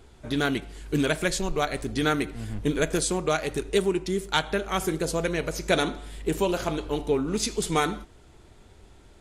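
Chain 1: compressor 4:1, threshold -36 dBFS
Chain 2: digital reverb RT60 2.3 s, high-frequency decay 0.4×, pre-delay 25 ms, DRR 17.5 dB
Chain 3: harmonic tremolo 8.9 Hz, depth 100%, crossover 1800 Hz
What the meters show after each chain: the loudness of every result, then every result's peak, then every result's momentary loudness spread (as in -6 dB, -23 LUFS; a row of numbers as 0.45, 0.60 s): -38.5, -27.0, -31.5 LUFS; -19.5, -7.5, -11.5 dBFS; 13, 5, 6 LU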